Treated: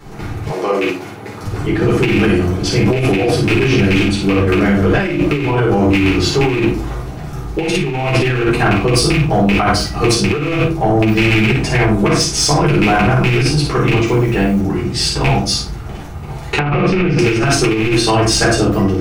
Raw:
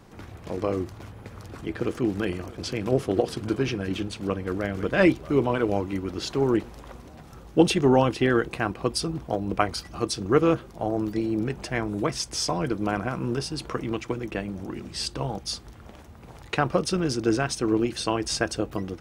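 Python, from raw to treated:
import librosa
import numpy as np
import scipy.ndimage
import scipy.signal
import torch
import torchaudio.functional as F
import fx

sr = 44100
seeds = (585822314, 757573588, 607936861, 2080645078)

y = fx.rattle_buzz(x, sr, strikes_db=-27.0, level_db=-13.0)
y = fx.room_early_taps(y, sr, ms=(14, 55), db=(-10.5, -5.5))
y = fx.room_shoebox(y, sr, seeds[0], volume_m3=180.0, walls='furnished', distance_m=4.1)
y = fx.quant_dither(y, sr, seeds[1], bits=8, dither='none', at=(14.05, 14.6), fade=0.02)
y = fx.over_compress(y, sr, threshold_db=-16.0, ratio=-1.0)
y = fx.highpass(y, sr, hz=fx.line((0.51, 510.0), (1.43, 210.0)), slope=12, at=(0.51, 1.43), fade=0.02)
y = 10.0 ** (-8.5 / 20.0) * np.tanh(y / 10.0 ** (-8.5 / 20.0))
y = fx.lowpass(y, sr, hz=2300.0, slope=12, at=(16.59, 17.19))
y = y * librosa.db_to_amplitude(4.5)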